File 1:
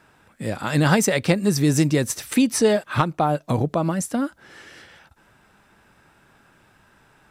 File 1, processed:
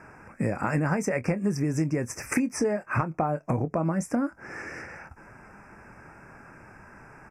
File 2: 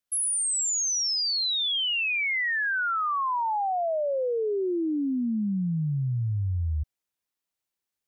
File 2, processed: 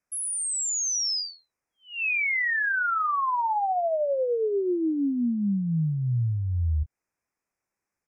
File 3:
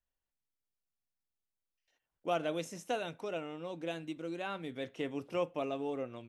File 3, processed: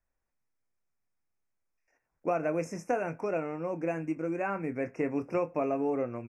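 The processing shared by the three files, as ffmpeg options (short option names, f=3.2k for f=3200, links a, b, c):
-filter_complex "[0:a]asuperstop=centerf=3600:order=12:qfactor=1.5,aemphasis=mode=reproduction:type=50fm,acompressor=threshold=-32dB:ratio=6,asplit=2[a][b];[b]adelay=25,volume=-13dB[c];[a][c]amix=inputs=2:normalize=0,volume=7.5dB"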